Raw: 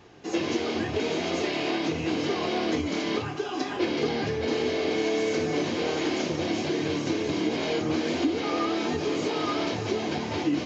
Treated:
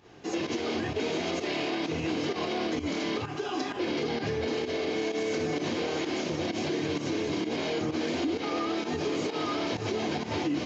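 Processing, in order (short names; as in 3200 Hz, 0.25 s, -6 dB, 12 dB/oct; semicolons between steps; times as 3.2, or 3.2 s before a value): pump 129 bpm, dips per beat 1, -12 dB, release 0.122 s; limiter -21.5 dBFS, peak gain reduction 6.5 dB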